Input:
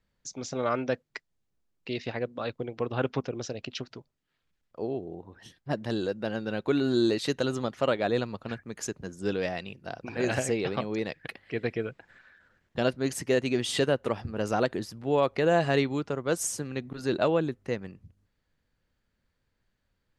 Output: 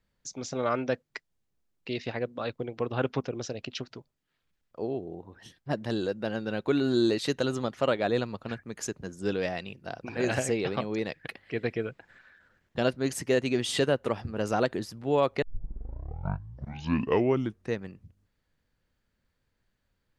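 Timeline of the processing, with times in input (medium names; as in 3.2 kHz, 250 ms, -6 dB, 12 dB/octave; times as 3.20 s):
15.42 s: tape start 2.39 s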